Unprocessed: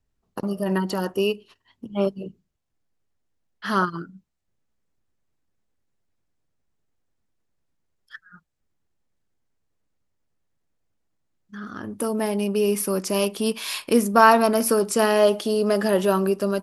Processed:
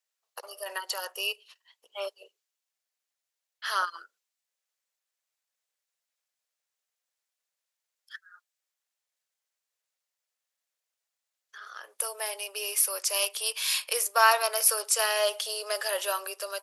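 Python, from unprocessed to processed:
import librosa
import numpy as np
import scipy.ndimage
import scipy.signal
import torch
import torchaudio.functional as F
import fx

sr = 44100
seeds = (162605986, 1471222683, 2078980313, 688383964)

y = scipy.signal.sosfilt(scipy.signal.butter(8, 510.0, 'highpass', fs=sr, output='sos'), x)
y = fx.peak_eq(y, sr, hz=670.0, db=-13.5, octaves=2.8)
y = y * librosa.db_to_amplitude(4.5)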